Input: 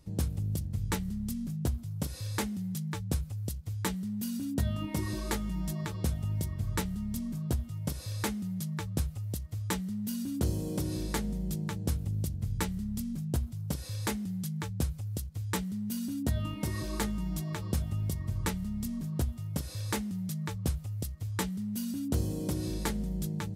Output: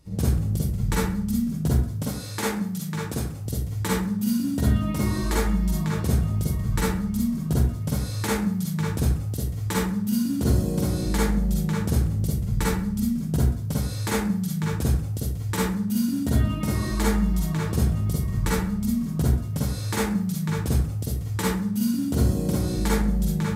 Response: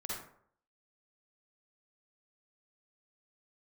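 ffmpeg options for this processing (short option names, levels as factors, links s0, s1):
-filter_complex "[0:a]asettb=1/sr,asplit=3[s0][s1][s2];[s0]atrim=end=2.024[s3];[s1]atrim=start=2.02:end=3.41,asetpts=PTS-STARTPTS,afade=t=in:d=0.004:c=qsin,afade=t=out:st=1.386:d=0.004:c=qsin,highpass=f=200:p=1[s4];[s2]atrim=start=3.406[s5];[s3][s4]acrossfade=d=0.004:c1=hsin:c2=qsin[s6];[s6][s5]acrossfade=d=0.004:c1=qsin:c2=hsin[s7];[1:a]atrim=start_sample=2205,asetrate=48510,aresample=44100[s8];[s7][s8]afir=irnorm=-1:irlink=0,volume=2.66"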